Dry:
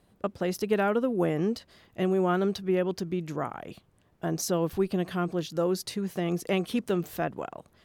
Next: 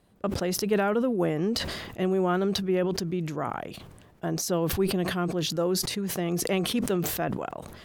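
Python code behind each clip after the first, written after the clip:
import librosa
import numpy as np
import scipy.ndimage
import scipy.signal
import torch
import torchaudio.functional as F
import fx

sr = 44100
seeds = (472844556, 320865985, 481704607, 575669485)

y = fx.sustainer(x, sr, db_per_s=40.0)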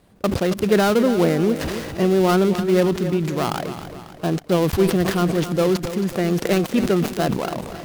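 y = fx.dead_time(x, sr, dead_ms=0.17)
y = fx.echo_feedback(y, sr, ms=272, feedback_pct=50, wet_db=-11.5)
y = F.gain(torch.from_numpy(y), 8.0).numpy()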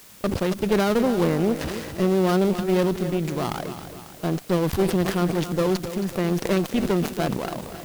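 y = fx.tube_stage(x, sr, drive_db=13.0, bias=0.7)
y = fx.quant_dither(y, sr, seeds[0], bits=8, dither='triangular')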